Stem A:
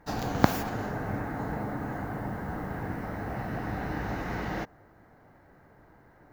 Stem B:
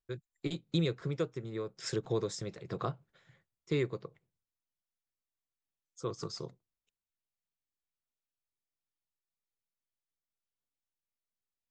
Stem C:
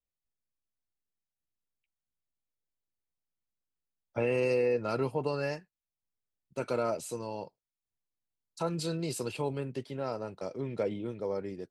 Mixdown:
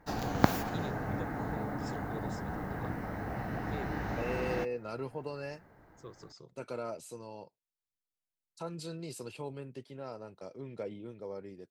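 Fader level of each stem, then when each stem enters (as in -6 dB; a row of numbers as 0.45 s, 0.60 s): -3.0 dB, -12.0 dB, -8.0 dB; 0.00 s, 0.00 s, 0.00 s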